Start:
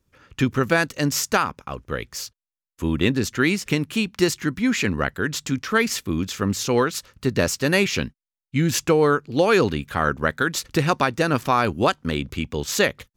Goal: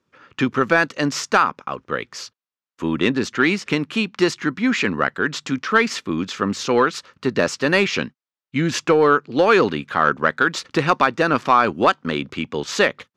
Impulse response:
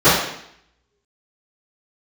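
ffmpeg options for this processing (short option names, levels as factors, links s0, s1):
-af "highpass=190,lowpass=4800,acontrast=49,equalizer=f=1200:w=1.7:g=4.5,volume=0.708"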